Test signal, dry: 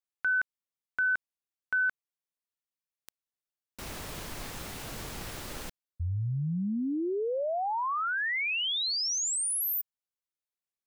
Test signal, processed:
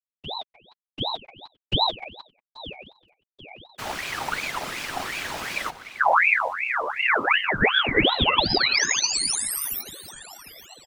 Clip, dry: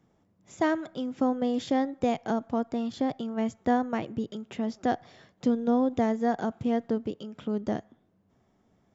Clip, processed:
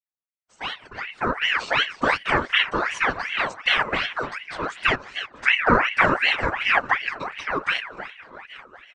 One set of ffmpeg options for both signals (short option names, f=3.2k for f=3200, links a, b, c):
-filter_complex "[0:a]aecho=1:1:2.3:0.37,agate=range=-35dB:threshold=-57dB:ratio=16:release=51:detection=peak,lowpass=f=4k:p=1,asplit=2[a][b];[b]adelay=303.2,volume=-12dB,highshelf=f=4k:g=-6.82[c];[a][c]amix=inputs=2:normalize=0,flanger=delay=7:depth=2:regen=-3:speed=0.24:shape=triangular,asplit=2[d][e];[e]aecho=0:1:834|1668|2502|3336:0.1|0.052|0.027|0.0141[f];[d][f]amix=inputs=2:normalize=0,dynaudnorm=f=170:g=17:m=14.5dB,equalizer=f=280:w=0.64:g=-4,afftfilt=real='hypot(re,im)*cos(2*PI*random(0))':imag='hypot(re,im)*sin(2*PI*random(1))':win_size=512:overlap=0.75,aeval=exprs='val(0)*sin(2*PI*1600*n/s+1600*0.55/2.7*sin(2*PI*2.7*n/s))':c=same,volume=7.5dB"